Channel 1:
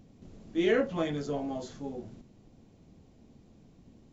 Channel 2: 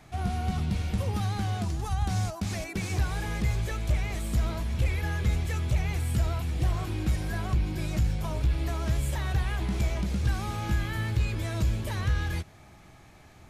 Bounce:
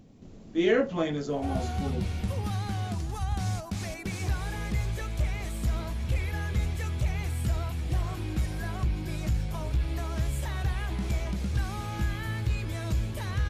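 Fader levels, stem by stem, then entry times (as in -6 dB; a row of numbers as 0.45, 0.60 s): +2.5, -2.0 dB; 0.00, 1.30 s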